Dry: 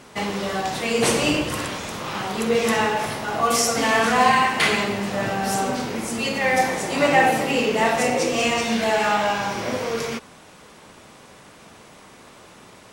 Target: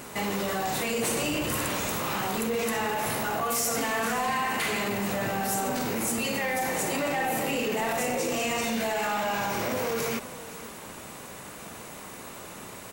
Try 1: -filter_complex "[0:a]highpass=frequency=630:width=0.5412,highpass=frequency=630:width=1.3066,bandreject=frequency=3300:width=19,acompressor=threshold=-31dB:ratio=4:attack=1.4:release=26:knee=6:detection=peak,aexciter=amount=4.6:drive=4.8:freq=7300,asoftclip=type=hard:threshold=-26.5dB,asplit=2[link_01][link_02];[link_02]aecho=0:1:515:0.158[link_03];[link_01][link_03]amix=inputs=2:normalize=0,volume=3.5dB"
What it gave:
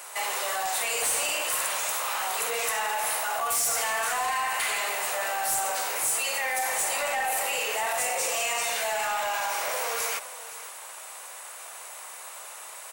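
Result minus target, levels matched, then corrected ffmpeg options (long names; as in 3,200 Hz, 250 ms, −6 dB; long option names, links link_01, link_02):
500 Hz band −5.5 dB; 8,000 Hz band +4.0 dB
-filter_complex "[0:a]bandreject=frequency=3300:width=19,acompressor=threshold=-31dB:ratio=4:attack=1.4:release=26:knee=6:detection=peak,equalizer=frequency=9200:width=1.7:gain=-7.5,aexciter=amount=4.6:drive=4.8:freq=7300,asoftclip=type=hard:threshold=-26.5dB,asplit=2[link_01][link_02];[link_02]aecho=0:1:515:0.158[link_03];[link_01][link_03]amix=inputs=2:normalize=0,volume=3.5dB"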